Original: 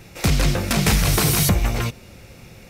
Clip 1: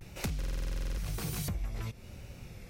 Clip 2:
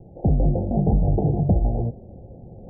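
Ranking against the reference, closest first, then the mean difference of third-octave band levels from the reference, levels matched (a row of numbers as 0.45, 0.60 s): 1, 2; 6.5, 18.5 dB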